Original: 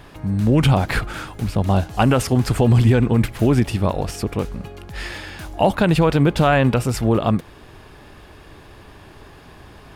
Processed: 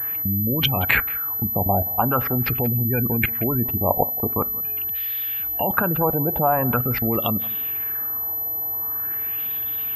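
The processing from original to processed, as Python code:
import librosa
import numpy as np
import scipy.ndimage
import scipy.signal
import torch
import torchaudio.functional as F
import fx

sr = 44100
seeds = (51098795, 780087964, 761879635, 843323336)

p1 = scipy.signal.sosfilt(scipy.signal.butter(2, 57.0, 'highpass', fs=sr, output='sos'), x)
p2 = fx.spec_gate(p1, sr, threshold_db=-25, keep='strong')
p3 = fx.high_shelf(p2, sr, hz=2100.0, db=11.0)
p4 = fx.level_steps(p3, sr, step_db=23)
p5 = fx.filter_lfo_lowpass(p4, sr, shape='sine', hz=0.44, low_hz=760.0, high_hz=3500.0, q=3.1)
p6 = p5 + fx.echo_single(p5, sr, ms=178, db=-20.5, dry=0)
p7 = fx.rev_fdn(p6, sr, rt60_s=0.37, lf_ratio=1.3, hf_ratio=0.3, size_ms=25.0, drr_db=18.0)
y = fx.pwm(p7, sr, carrier_hz=12000.0)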